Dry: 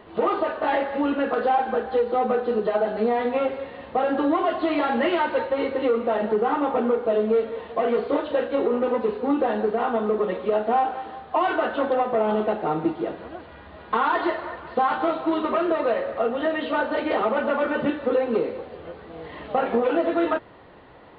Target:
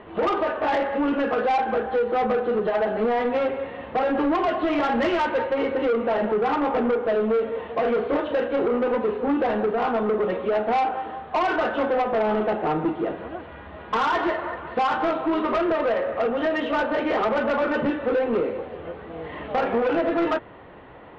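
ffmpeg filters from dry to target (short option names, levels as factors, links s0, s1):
-af "lowpass=f=3200:w=0.5412,lowpass=f=3200:w=1.3066,asoftclip=type=tanh:threshold=0.0891,volume=1.5"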